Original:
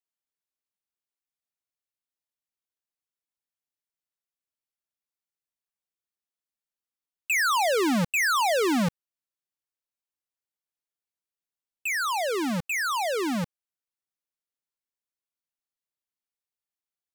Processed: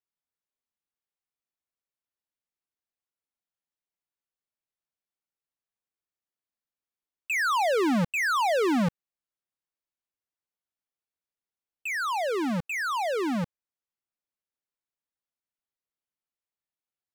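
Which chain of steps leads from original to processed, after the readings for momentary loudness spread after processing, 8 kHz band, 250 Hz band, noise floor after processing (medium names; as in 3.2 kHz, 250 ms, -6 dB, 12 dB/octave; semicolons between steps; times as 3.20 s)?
7 LU, -8.0 dB, 0.0 dB, under -85 dBFS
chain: treble shelf 3.6 kHz -10 dB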